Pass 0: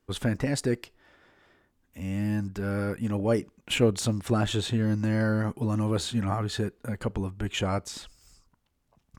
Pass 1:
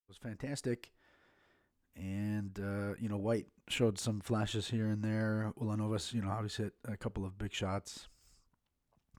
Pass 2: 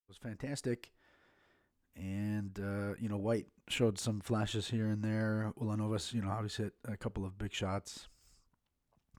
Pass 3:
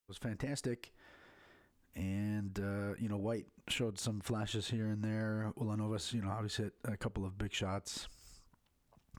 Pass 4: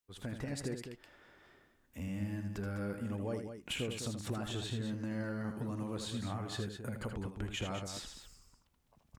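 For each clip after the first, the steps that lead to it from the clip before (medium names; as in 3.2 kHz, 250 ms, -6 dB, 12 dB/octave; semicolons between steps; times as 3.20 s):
fade-in on the opening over 0.75 s; trim -9 dB
no audible change
compression 4:1, threshold -44 dBFS, peak gain reduction 15.5 dB; trim +7.5 dB
multi-tap echo 79/204 ms -7/-8.5 dB; trim -1.5 dB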